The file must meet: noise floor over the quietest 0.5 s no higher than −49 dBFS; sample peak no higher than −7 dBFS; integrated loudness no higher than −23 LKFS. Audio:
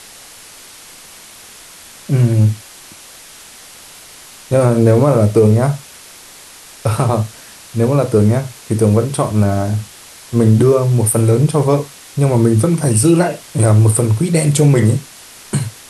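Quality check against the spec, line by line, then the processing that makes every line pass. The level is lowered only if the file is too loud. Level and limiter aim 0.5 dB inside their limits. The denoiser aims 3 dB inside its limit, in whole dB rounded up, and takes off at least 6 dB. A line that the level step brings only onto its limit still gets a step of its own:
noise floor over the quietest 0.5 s −38 dBFS: out of spec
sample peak −2.0 dBFS: out of spec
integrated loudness −14.0 LKFS: out of spec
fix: broadband denoise 6 dB, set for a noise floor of −38 dBFS
level −9.5 dB

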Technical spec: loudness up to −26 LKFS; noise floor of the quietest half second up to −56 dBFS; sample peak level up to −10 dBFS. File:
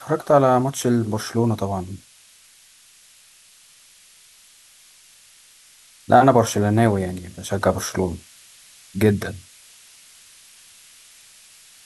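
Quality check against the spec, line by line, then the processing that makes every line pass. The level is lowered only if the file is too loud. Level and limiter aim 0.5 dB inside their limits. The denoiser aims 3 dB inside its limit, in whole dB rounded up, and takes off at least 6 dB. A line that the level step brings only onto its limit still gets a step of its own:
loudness −20.0 LKFS: out of spec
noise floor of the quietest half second −52 dBFS: out of spec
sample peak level −2.5 dBFS: out of spec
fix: level −6.5 dB
brickwall limiter −10.5 dBFS

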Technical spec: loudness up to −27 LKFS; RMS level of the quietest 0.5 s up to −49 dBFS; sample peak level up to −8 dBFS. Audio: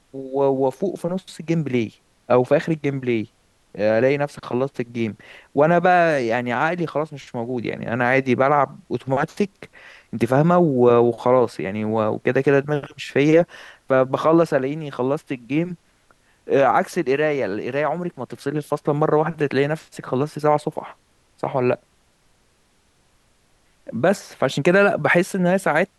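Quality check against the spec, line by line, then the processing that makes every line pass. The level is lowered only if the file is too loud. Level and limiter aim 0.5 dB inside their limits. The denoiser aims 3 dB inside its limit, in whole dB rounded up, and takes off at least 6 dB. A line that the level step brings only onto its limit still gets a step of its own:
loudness −20.5 LKFS: out of spec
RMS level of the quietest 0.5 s −61 dBFS: in spec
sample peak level −5.0 dBFS: out of spec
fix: level −7 dB

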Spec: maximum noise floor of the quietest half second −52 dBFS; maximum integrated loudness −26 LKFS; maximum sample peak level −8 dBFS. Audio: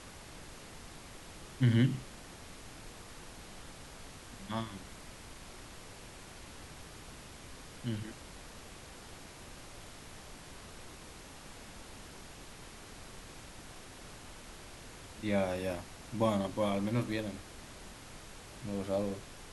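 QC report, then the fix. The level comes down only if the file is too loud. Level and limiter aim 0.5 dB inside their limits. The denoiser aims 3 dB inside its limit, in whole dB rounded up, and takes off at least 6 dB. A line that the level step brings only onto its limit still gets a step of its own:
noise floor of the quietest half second −50 dBFS: out of spec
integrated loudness −40.0 LKFS: in spec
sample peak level −17.0 dBFS: in spec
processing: broadband denoise 6 dB, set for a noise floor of −50 dBFS

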